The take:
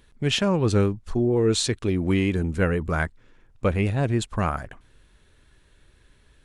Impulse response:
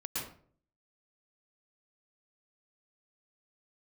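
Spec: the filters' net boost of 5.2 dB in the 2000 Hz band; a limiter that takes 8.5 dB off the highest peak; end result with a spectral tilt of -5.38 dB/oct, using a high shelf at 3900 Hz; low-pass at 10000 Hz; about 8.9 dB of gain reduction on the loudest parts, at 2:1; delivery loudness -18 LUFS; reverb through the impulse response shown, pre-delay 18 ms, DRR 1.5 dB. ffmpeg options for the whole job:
-filter_complex "[0:a]lowpass=10k,equalizer=f=2k:t=o:g=8.5,highshelf=f=3.9k:g=-6,acompressor=threshold=-33dB:ratio=2,alimiter=limit=-23.5dB:level=0:latency=1,asplit=2[a][b];[1:a]atrim=start_sample=2205,adelay=18[c];[b][c]afir=irnorm=-1:irlink=0,volume=-4dB[d];[a][d]amix=inputs=2:normalize=0,volume=13dB"

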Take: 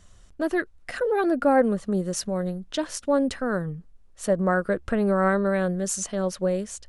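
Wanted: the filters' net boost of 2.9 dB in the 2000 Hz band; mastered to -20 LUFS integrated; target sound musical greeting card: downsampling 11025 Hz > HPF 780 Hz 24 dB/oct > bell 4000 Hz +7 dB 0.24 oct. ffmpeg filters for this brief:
-af "equalizer=f=2k:t=o:g=4,aresample=11025,aresample=44100,highpass=f=780:w=0.5412,highpass=f=780:w=1.3066,equalizer=f=4k:t=o:w=0.24:g=7,volume=11dB"

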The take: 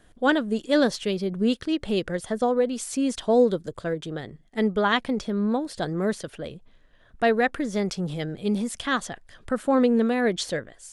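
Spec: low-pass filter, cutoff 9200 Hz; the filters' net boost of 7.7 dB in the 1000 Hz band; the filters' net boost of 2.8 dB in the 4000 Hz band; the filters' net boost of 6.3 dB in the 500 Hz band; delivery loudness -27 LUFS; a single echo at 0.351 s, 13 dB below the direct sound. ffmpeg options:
-af "lowpass=9.2k,equalizer=f=500:t=o:g=5,equalizer=f=1k:t=o:g=8.5,equalizer=f=4k:t=o:g=3,aecho=1:1:351:0.224,volume=-6.5dB"

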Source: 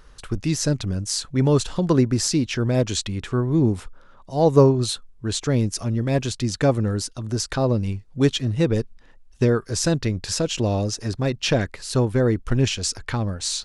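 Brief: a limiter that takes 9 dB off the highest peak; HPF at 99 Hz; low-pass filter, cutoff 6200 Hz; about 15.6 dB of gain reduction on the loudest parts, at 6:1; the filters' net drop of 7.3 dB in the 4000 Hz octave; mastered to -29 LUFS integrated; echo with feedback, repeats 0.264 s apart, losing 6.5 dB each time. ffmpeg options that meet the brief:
-af "highpass=99,lowpass=6.2k,equalizer=f=4k:t=o:g=-8.5,acompressor=threshold=-26dB:ratio=6,alimiter=limit=-24dB:level=0:latency=1,aecho=1:1:264|528|792|1056|1320|1584:0.473|0.222|0.105|0.0491|0.0231|0.0109,volume=4.5dB"

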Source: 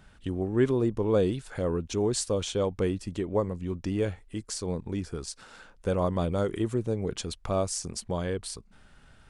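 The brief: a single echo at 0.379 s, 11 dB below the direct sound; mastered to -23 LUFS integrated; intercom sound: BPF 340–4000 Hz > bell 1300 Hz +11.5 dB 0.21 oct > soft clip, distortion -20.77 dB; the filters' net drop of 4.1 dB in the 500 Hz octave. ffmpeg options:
-af "highpass=340,lowpass=4k,equalizer=f=500:t=o:g=-3.5,equalizer=f=1.3k:t=o:w=0.21:g=11.5,aecho=1:1:379:0.282,asoftclip=threshold=-19.5dB,volume=12dB"

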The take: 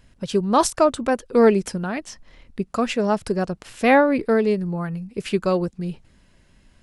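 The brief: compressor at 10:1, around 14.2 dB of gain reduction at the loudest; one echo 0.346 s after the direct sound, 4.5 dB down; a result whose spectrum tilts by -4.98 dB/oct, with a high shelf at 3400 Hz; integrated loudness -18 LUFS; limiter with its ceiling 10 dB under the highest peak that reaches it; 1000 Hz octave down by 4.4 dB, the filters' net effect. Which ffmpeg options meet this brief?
-af "equalizer=f=1k:t=o:g=-6.5,highshelf=f=3.4k:g=6.5,acompressor=threshold=-26dB:ratio=10,alimiter=level_in=0.5dB:limit=-24dB:level=0:latency=1,volume=-0.5dB,aecho=1:1:346:0.596,volume=15dB"

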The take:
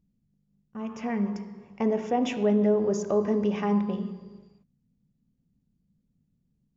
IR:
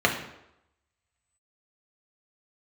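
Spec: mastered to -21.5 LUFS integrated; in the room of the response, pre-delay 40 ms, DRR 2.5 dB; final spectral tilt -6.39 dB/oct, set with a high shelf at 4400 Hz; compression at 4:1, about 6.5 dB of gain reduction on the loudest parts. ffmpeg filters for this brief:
-filter_complex "[0:a]highshelf=f=4.4k:g=-5.5,acompressor=threshold=-27dB:ratio=4,asplit=2[a][b];[1:a]atrim=start_sample=2205,adelay=40[c];[b][c]afir=irnorm=-1:irlink=0,volume=-19dB[d];[a][d]amix=inputs=2:normalize=0,volume=7dB"

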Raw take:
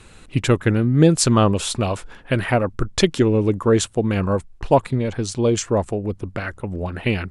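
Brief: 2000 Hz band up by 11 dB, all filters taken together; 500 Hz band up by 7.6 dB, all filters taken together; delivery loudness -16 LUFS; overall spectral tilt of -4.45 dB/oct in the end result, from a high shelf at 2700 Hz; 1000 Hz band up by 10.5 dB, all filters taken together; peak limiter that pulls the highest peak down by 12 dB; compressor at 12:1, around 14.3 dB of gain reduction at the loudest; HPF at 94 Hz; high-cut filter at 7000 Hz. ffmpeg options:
-af "highpass=94,lowpass=7k,equalizer=f=500:t=o:g=6.5,equalizer=f=1k:t=o:g=8.5,equalizer=f=2k:t=o:g=8.5,highshelf=f=2.7k:g=5.5,acompressor=threshold=-15dB:ratio=12,volume=8dB,alimiter=limit=-4dB:level=0:latency=1"

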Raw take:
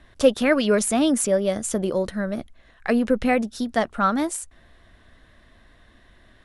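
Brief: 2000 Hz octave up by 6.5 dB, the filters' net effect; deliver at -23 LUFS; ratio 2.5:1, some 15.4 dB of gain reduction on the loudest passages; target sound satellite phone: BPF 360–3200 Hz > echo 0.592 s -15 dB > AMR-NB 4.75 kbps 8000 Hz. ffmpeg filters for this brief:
-af "equalizer=f=2k:t=o:g=8.5,acompressor=threshold=-35dB:ratio=2.5,highpass=360,lowpass=3.2k,aecho=1:1:592:0.178,volume=14dB" -ar 8000 -c:a libopencore_amrnb -b:a 4750

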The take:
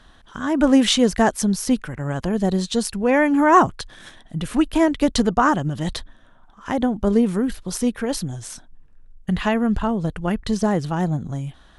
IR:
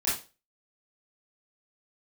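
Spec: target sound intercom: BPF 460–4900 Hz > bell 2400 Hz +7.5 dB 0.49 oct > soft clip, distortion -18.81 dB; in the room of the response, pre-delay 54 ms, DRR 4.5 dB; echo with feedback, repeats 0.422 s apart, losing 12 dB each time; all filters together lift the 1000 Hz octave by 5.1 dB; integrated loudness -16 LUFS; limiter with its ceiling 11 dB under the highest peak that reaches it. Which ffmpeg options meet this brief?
-filter_complex "[0:a]equalizer=f=1k:t=o:g=6,alimiter=limit=-10.5dB:level=0:latency=1,aecho=1:1:422|844|1266:0.251|0.0628|0.0157,asplit=2[a][b];[1:a]atrim=start_sample=2205,adelay=54[c];[b][c]afir=irnorm=-1:irlink=0,volume=-13.5dB[d];[a][d]amix=inputs=2:normalize=0,highpass=460,lowpass=4.9k,equalizer=f=2.4k:t=o:w=0.49:g=7.5,asoftclip=threshold=-11.5dB,volume=9dB"

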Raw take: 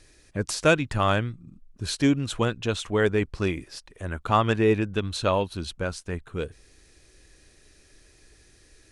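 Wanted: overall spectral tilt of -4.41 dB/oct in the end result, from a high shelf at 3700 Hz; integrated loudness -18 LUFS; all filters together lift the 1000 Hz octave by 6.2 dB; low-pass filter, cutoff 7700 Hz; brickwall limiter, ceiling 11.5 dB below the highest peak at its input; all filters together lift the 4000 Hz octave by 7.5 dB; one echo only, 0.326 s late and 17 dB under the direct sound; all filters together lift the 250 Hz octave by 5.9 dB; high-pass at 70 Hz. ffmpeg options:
-af "highpass=70,lowpass=7.7k,equalizer=f=250:t=o:g=7,equalizer=f=1k:t=o:g=6.5,highshelf=f=3.7k:g=8,equalizer=f=4k:t=o:g=4,alimiter=limit=-12dB:level=0:latency=1,aecho=1:1:326:0.141,volume=7.5dB"

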